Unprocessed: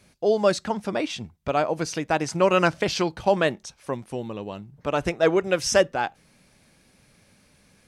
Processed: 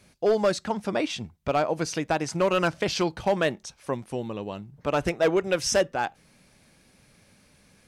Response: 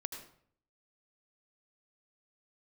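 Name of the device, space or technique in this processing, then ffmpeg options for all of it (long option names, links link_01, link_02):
limiter into clipper: -af "alimiter=limit=-11dB:level=0:latency=1:release=498,asoftclip=type=hard:threshold=-15.5dB"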